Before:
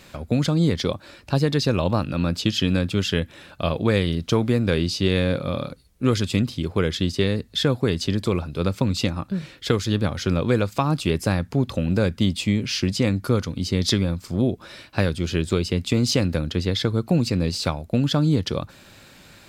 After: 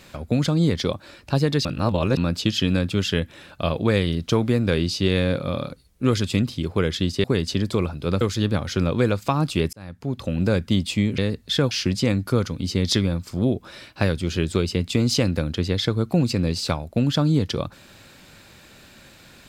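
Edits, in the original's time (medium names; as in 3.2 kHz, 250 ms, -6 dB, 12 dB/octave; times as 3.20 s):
1.65–2.17 s: reverse
7.24–7.77 s: move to 12.68 s
8.74–9.71 s: delete
11.23–11.94 s: fade in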